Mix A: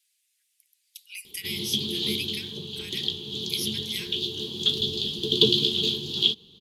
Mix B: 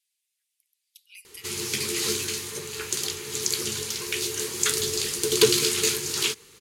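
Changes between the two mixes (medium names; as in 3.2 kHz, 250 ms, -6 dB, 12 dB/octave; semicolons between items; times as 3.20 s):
speech -7.5 dB; background: remove FFT filter 120 Hz 0 dB, 190 Hz +10 dB, 500 Hz -8 dB, 790 Hz -7 dB, 1.4 kHz -22 dB, 2.2 kHz -25 dB, 3.3 kHz +12 dB, 5.5 kHz -15 dB, 8.5 kHz -27 dB, 13 kHz -19 dB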